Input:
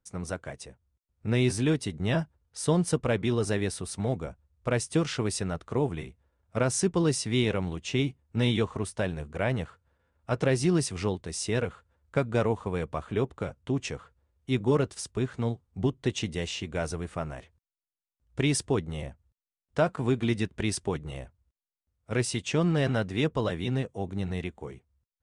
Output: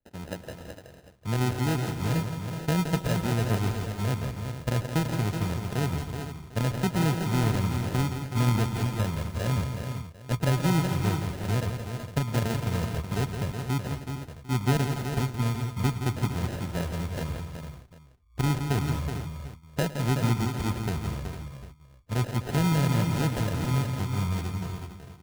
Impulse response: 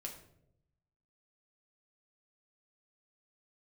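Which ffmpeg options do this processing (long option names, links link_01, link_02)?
-filter_complex "[0:a]asubboost=boost=3:cutoff=200,acrossover=split=110|3700[link_01][link_02][link_03];[link_03]alimiter=level_in=4dB:limit=-24dB:level=0:latency=1,volume=-4dB[link_04];[link_01][link_02][link_04]amix=inputs=3:normalize=0,acrusher=samples=39:mix=1:aa=0.000001,aecho=1:1:108|169|257|374|455|749:0.133|0.398|0.158|0.422|0.251|0.112,volume=-4dB"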